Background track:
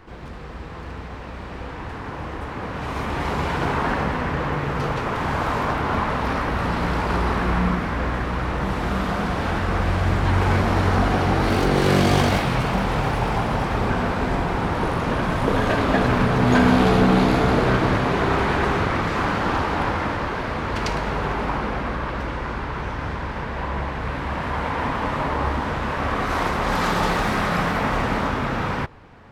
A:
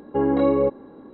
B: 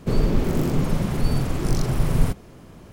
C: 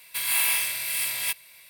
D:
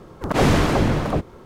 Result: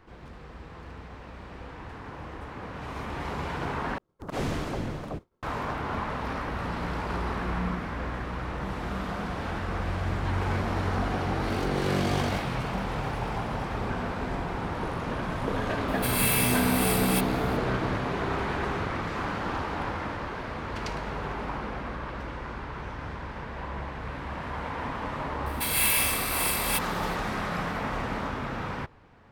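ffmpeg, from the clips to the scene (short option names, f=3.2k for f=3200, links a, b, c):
-filter_complex "[3:a]asplit=2[a][b];[0:a]volume=-9dB[c];[4:a]agate=range=-33dB:threshold=-32dB:ratio=3:release=100:detection=peak[d];[c]asplit=2[e][f];[e]atrim=end=3.984[g];[d]atrim=end=1.45,asetpts=PTS-STARTPTS,volume=-13.5dB[h];[f]atrim=start=5.426[i];[a]atrim=end=1.69,asetpts=PTS-STARTPTS,volume=-3dB,afade=t=in:d=0.004:c=hsin,afade=t=out:st=1.686:d=0.004:c=hsin,adelay=700308S[j];[b]atrim=end=1.69,asetpts=PTS-STARTPTS,volume=-1dB,afade=t=in:d=0.004:c=hsin,afade=t=out:st=1.686:d=0.004:c=hsin,adelay=25460[k];[g][h]acrossfade=d=0.004:c1=hsin:c2=hsin[l];[l][i]acrossfade=d=0.004:c1=hsin:c2=hsin[m];[m][j][k]amix=inputs=3:normalize=0"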